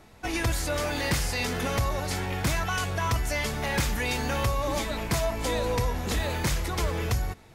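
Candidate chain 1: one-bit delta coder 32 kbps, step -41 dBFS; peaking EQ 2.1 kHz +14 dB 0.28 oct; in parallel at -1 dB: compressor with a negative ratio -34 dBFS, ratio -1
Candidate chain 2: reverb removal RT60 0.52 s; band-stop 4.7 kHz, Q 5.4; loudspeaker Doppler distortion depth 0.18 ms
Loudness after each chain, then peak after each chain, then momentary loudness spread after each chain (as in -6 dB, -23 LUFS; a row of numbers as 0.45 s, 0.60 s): -24.5 LUFS, -29.5 LUFS; -13.0 dBFS, -16.5 dBFS; 2 LU, 2 LU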